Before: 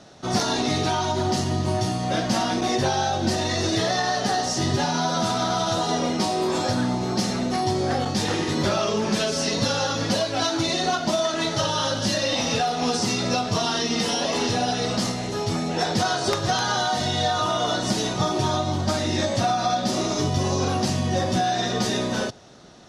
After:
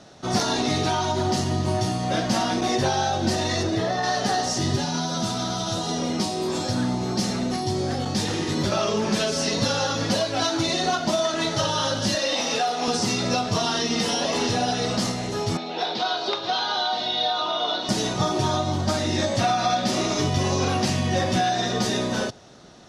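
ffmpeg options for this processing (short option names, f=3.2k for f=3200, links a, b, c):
-filter_complex "[0:a]asplit=3[a][b][c];[a]afade=t=out:st=3.62:d=0.02[d];[b]highshelf=f=2.5k:g=-11,afade=t=in:st=3.62:d=0.02,afade=t=out:st=4.02:d=0.02[e];[c]afade=t=in:st=4.02:d=0.02[f];[d][e][f]amix=inputs=3:normalize=0,asettb=1/sr,asplit=3[g][h][i];[g]atrim=end=4.584[j];[h]atrim=start=4.58:end=8.72,asetpts=PTS-STARTPTS,afade=t=in:d=0.004:c=qsin,afade=t=out:st=4.136:d=0.004:c=qsin,acrossover=split=360|3000[k][l][m];[l]acompressor=threshold=-29dB:ratio=6:attack=3.2:release=140:knee=2.83:detection=peak[n];[k][n][m]amix=inputs=3:normalize=0[o];[i]atrim=start=8.716[p];[j][o]acrossfade=d=0.004:c1=hsin:c2=qsin[q];[q][p]acrossfade=d=0.004:c1=qsin:c2=hsin,asettb=1/sr,asplit=3[r][s][t];[r]atrim=end=12.154[u];[s]atrim=start=12.15:end=12.88,asetpts=PTS-STARTPTS,afade=t=in:d=0.004:c=qsin,afade=t=out:st=0.726:d=0.004:c=qsin,highpass=290[v];[t]atrim=start=12.876[w];[u][v]acrossfade=d=0.004:c1=hsin:c2=qsin[x];[x][w]acrossfade=d=0.004:c1=qsin:c2=hsin,asettb=1/sr,asplit=3[y][z][aa];[y]atrim=end=15.574[ab];[z]atrim=start=15.57:end=17.89,asetpts=PTS-STARTPTS,afade=t=in:d=0.004:c=qsin,afade=t=out:st=2.316:d=0.004:c=qsin,highpass=400,equalizer=f=540:t=q:w=4:g=-5,equalizer=f=1.2k:t=q:w=4:g=-3,equalizer=f=1.8k:t=q:w=4:g=-8,equalizer=f=3.8k:t=q:w=4:g=6,lowpass=f=4.3k:w=0.5412,lowpass=f=4.3k:w=1.3066[ac];[aa]atrim=start=17.886[ad];[ab][ac]acrossfade=d=0.004:c1=hsin:c2=qsin[ae];[ae][ad]acrossfade=d=0.004:c1=qsin:c2=hsin,asettb=1/sr,asplit=3[af][ag][ah];[af]atrim=end=19.394[ai];[ag]atrim=start=19.39:end=21.49,asetpts=PTS-STARTPTS,afade=t=in:d=0.004:c=qsin,afade=t=out:st=2.096:d=0.004:c=qsin,equalizer=f=2.3k:w=1.3:g=5.5[aj];[ah]atrim=start=21.486[ak];[ai][aj]acrossfade=d=0.004:c1=hsin:c2=qsin[al];[al][ak]acrossfade=d=0.004:c1=qsin:c2=hsin"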